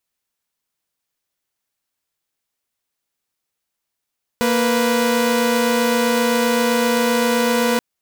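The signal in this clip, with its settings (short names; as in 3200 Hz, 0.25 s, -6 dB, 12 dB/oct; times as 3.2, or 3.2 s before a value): chord A#3/B4 saw, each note -15.5 dBFS 3.38 s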